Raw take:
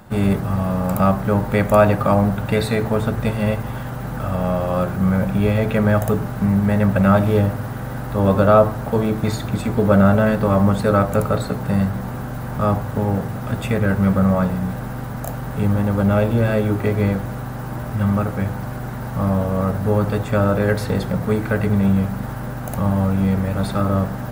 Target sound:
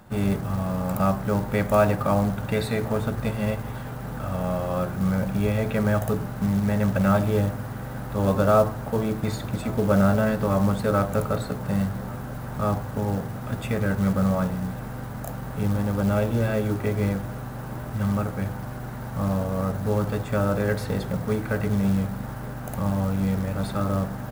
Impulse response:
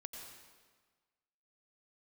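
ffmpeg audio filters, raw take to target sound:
-af "aecho=1:1:1139:0.0708,acrusher=bits=6:mode=log:mix=0:aa=0.000001,volume=0.501"

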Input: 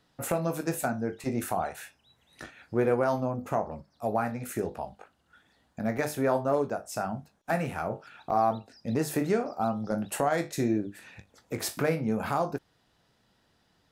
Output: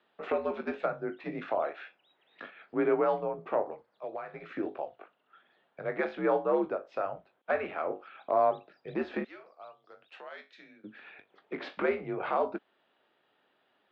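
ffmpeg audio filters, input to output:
-filter_complex "[0:a]asettb=1/sr,asplit=3[s0][s1][s2];[s0]atrim=end=3.734[s3];[s1]atrim=start=3.73:end=4.34,asetpts=PTS-STARTPTS,afade=t=in:d=0.004:c=qsin,afade=t=out:st=0.606:d=0.004:c=qsin,acrossover=split=680|2700[s4][s5][s6];[s4]acompressor=threshold=0.00631:ratio=4[s7];[s5]acompressor=threshold=0.01:ratio=4[s8];[s6]acompressor=threshold=0.00178:ratio=4[s9];[s7][s8][s9]amix=inputs=3:normalize=0[s10];[s2]atrim=start=4.336[s11];[s3][s10]acrossfade=d=0.004:c1=hsin:c2=qsin[s12];[s12][s11]acrossfade=d=0.004:c1=qsin:c2=hsin,asettb=1/sr,asplit=3[s13][s14][s15];[s13]atrim=end=9.244[s16];[s14]atrim=start=9.24:end=10.84,asetpts=PTS-STARTPTS,afade=t=in:d=0.004:c=qsin,afade=t=out:st=1.596:d=0.004:c=qsin,aderivative[s17];[s15]atrim=start=10.836[s18];[s16][s17]acrossfade=d=0.004:c1=hsin:c2=qsin[s19];[s19][s18]acrossfade=d=0.004:c1=qsin:c2=hsin,highpass=f=370:t=q:w=0.5412,highpass=f=370:t=q:w=1.307,lowpass=f=3500:t=q:w=0.5176,lowpass=f=3500:t=q:w=0.7071,lowpass=f=3500:t=q:w=1.932,afreqshift=-83"

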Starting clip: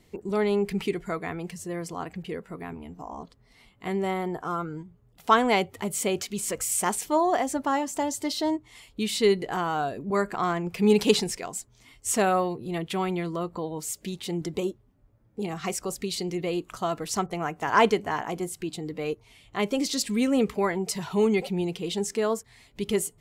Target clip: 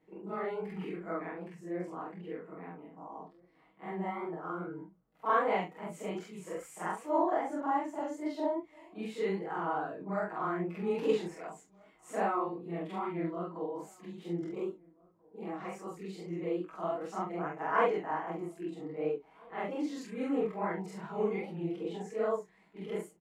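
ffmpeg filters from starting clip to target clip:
-filter_complex "[0:a]afftfilt=real='re':imag='-im':win_size=4096:overlap=0.75,aecho=1:1:6.3:0.64,adynamicequalizer=threshold=0.00178:dfrequency=7000:dqfactor=6.5:tfrequency=7000:tqfactor=6.5:attack=5:release=100:ratio=0.375:range=2.5:mode=boostabove:tftype=bell,flanger=delay=18:depth=8:speed=2.5,acrossover=split=190 2100:gain=0.112 1 0.0891[s0][s1][s2];[s0][s1][s2]amix=inputs=3:normalize=0,asplit=2[s3][s4];[s4]adelay=1633,volume=0.0501,highshelf=f=4000:g=-36.7[s5];[s3][s5]amix=inputs=2:normalize=0"

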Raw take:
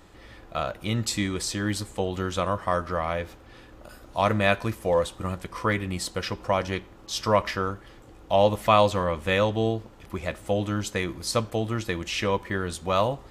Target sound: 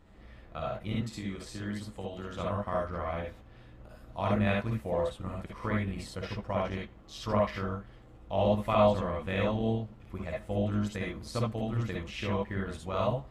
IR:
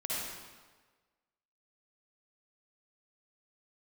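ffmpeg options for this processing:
-filter_complex "[0:a]bass=f=250:g=7,treble=f=4000:g=-8,tremolo=f=150:d=0.519,asettb=1/sr,asplit=3[s0][s1][s2];[s0]atrim=end=0.954[s3];[s1]atrim=start=0.95:end=2.39,asetpts=PTS-STARTPTS,afade=t=in:d=0.004:c=qsin,afade=t=out:st=1.436:d=0.004:c=qsin,acrossover=split=160|1500[s4][s5][s6];[s4]acompressor=threshold=0.0141:ratio=4[s7];[s5]acompressor=threshold=0.0316:ratio=4[s8];[s6]acompressor=threshold=0.0112:ratio=4[s9];[s7][s8][s9]amix=inputs=3:normalize=0[s10];[s2]atrim=start=2.386[s11];[s3][s10]acrossfade=d=0.004:c1=hsin:c2=qsin[s12];[s12][s11]acrossfade=d=0.004:c1=qsin:c2=hsin[s13];[1:a]atrim=start_sample=2205,atrim=end_sample=3528[s14];[s13][s14]afir=irnorm=-1:irlink=0,volume=0.501"

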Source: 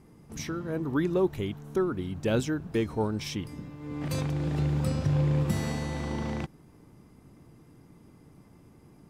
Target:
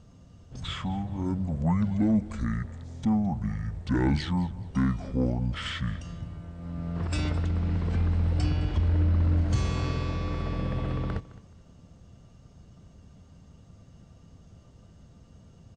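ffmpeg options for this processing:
-filter_complex "[0:a]asoftclip=type=tanh:threshold=0.126,asplit=2[s0][s1];[s1]aecho=0:1:123|246:0.112|0.0292[s2];[s0][s2]amix=inputs=2:normalize=0,asetrate=25442,aresample=44100,volume=1.33"

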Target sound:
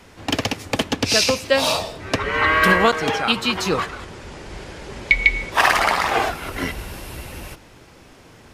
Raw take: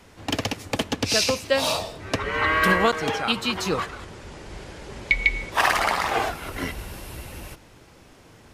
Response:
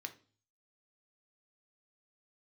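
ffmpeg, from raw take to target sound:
-filter_complex "[0:a]asplit=2[s0][s1];[1:a]atrim=start_sample=2205,lowpass=8500[s2];[s1][s2]afir=irnorm=-1:irlink=0,volume=0.299[s3];[s0][s3]amix=inputs=2:normalize=0,volume=1.41"

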